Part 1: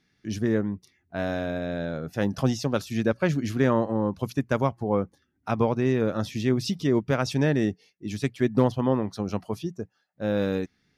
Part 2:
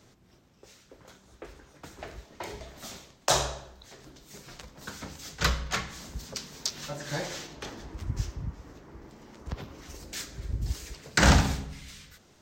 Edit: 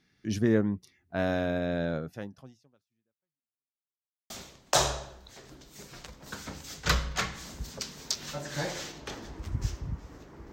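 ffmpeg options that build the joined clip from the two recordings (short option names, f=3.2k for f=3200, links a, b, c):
-filter_complex "[0:a]apad=whole_dur=10.52,atrim=end=10.52,asplit=2[a][b];[a]atrim=end=3.81,asetpts=PTS-STARTPTS,afade=t=out:st=1.97:d=1.84:c=exp[c];[b]atrim=start=3.81:end=4.3,asetpts=PTS-STARTPTS,volume=0[d];[1:a]atrim=start=2.85:end=9.07,asetpts=PTS-STARTPTS,afade=t=in:d=0.004:c=hsin[e];[c][d][e]concat=n=3:v=0:a=1"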